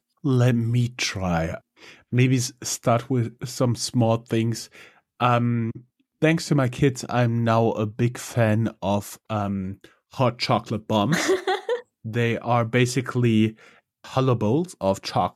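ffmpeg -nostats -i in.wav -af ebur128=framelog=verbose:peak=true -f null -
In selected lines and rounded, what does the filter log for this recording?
Integrated loudness:
  I:         -23.4 LUFS
  Threshold: -33.8 LUFS
Loudness range:
  LRA:         1.9 LU
  Threshold: -43.8 LUFS
  LRA low:   -24.8 LUFS
  LRA high:  -22.8 LUFS
True peak:
  Peak:       -5.6 dBFS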